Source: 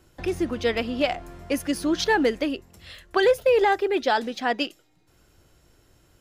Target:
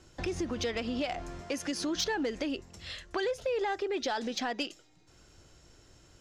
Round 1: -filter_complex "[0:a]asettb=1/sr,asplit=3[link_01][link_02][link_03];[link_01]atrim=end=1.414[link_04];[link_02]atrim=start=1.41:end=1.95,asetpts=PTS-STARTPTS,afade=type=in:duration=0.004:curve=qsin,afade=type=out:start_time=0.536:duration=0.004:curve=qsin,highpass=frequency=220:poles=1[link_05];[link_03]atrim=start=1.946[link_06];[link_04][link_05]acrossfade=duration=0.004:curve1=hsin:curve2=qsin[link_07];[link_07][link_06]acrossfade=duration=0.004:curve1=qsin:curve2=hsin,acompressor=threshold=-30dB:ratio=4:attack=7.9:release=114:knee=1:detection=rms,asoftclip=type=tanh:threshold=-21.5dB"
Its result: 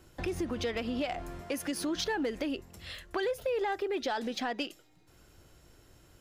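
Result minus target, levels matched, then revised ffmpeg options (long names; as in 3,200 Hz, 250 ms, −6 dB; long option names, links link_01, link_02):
8,000 Hz band −2.5 dB
-filter_complex "[0:a]asettb=1/sr,asplit=3[link_01][link_02][link_03];[link_01]atrim=end=1.414[link_04];[link_02]atrim=start=1.41:end=1.95,asetpts=PTS-STARTPTS,afade=type=in:duration=0.004:curve=qsin,afade=type=out:start_time=0.536:duration=0.004:curve=qsin,highpass=frequency=220:poles=1[link_05];[link_03]atrim=start=1.946[link_06];[link_04][link_05]acrossfade=duration=0.004:curve1=hsin:curve2=qsin[link_07];[link_07][link_06]acrossfade=duration=0.004:curve1=qsin:curve2=hsin,acompressor=threshold=-30dB:ratio=4:attack=7.9:release=114:knee=1:detection=rms,lowpass=frequency=6500:width_type=q:width=1.9,asoftclip=type=tanh:threshold=-21.5dB"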